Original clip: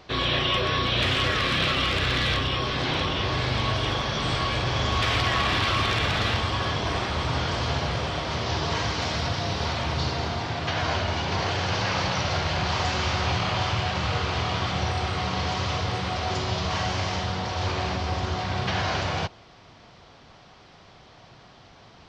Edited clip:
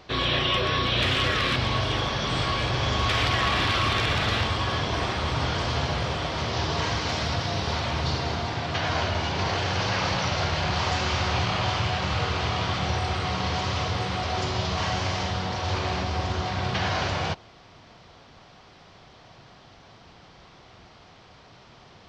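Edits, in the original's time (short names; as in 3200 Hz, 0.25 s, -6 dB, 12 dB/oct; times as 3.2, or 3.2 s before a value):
1.56–3.49 cut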